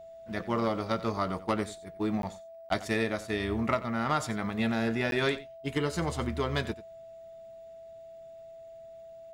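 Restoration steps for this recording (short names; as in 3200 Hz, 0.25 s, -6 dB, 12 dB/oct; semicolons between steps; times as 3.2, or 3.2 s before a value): notch 660 Hz, Q 30; interpolate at 2.22/2.69/5.11, 12 ms; inverse comb 90 ms -16.5 dB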